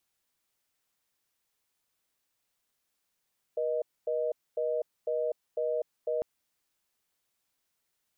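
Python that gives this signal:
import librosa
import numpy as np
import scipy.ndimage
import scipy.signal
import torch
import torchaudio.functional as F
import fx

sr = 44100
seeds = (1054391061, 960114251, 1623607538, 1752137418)

y = fx.call_progress(sr, length_s=2.65, kind='reorder tone', level_db=-30.0)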